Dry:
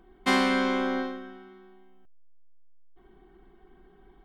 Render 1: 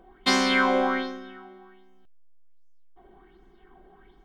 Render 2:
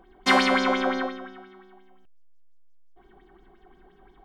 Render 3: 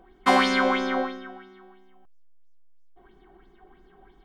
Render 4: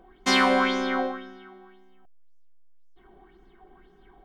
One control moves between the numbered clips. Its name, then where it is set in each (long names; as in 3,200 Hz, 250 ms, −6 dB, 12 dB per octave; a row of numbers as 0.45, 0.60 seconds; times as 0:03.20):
auto-filter bell, speed: 1.3, 5.7, 3, 1.9 Hertz